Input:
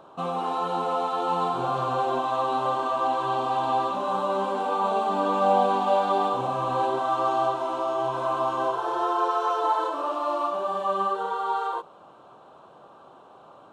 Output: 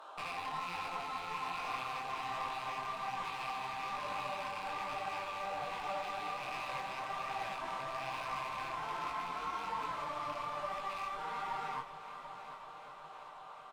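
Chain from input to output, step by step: rattle on loud lows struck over -40 dBFS, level -21 dBFS; high-pass 920 Hz 12 dB/octave; in parallel at +2 dB: compression, threshold -46 dBFS, peak gain reduction 22 dB; on the sum: peak limiter -23.5 dBFS, peak gain reduction 10 dB; gain riding; one-sided clip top -35.5 dBFS; comb 6.6 ms, depth 33%; on a send: multi-head delay 371 ms, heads first and second, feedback 70%, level -15 dB; 9.35–9.79 s: on the sum: frequency shift +27 Hz; detune thickener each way 42 cents; trim -3 dB

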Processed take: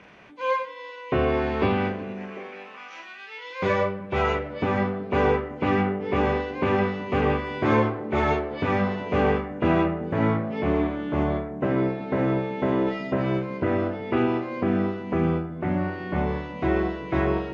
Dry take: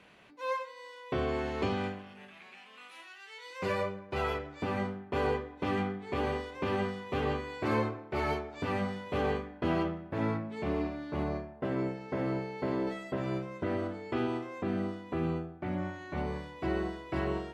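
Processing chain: knee-point frequency compression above 2.1 kHz 1.5:1; repeats whose band climbs or falls 373 ms, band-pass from 200 Hz, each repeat 1.4 oct, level -9.5 dB; trim +9 dB

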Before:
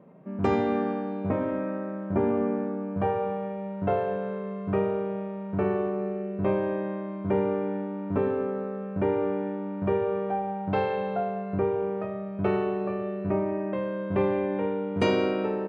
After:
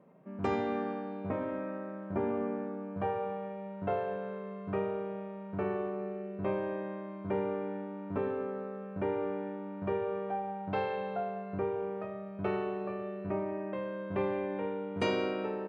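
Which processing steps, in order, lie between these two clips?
bass shelf 470 Hz -5 dB; trim -4.5 dB

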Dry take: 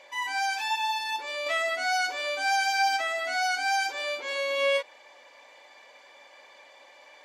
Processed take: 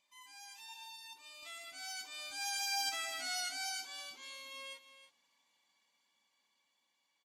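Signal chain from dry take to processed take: Doppler pass-by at 3.06 s, 9 m/s, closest 4.1 m; FFT filter 170 Hz 0 dB, 550 Hz -30 dB, 1.1 kHz -16 dB, 1.7 kHz -23 dB, 3.1 kHz -12 dB, 5.8 kHz -9 dB, 9 kHz -3 dB; on a send: delay 320 ms -13 dB; on the sum: trim +7.5 dB

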